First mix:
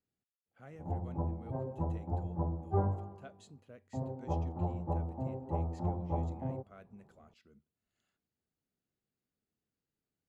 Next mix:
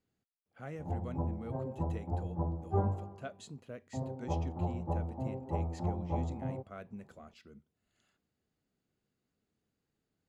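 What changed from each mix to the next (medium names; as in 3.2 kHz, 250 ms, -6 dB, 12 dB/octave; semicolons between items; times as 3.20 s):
speech +8.0 dB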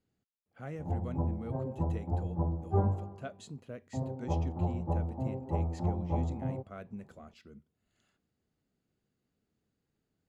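master: add bass shelf 400 Hz +3.5 dB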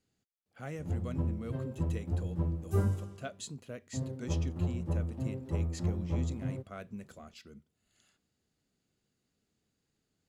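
speech: add treble shelf 2.9 kHz +12 dB; background: remove resonant low-pass 820 Hz, resonance Q 5.7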